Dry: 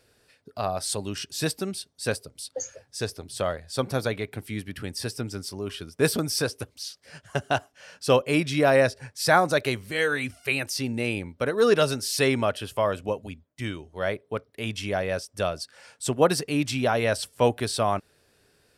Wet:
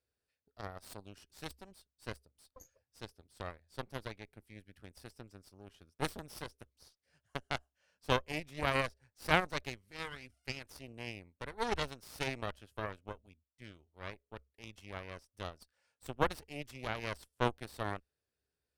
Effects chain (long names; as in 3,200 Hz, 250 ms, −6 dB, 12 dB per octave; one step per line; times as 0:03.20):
harmonic generator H 3 −10 dB, 4 −17 dB, 5 −45 dB, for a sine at −4 dBFS
parametric band 66 Hz +14.5 dB 0.4 octaves
level −5.5 dB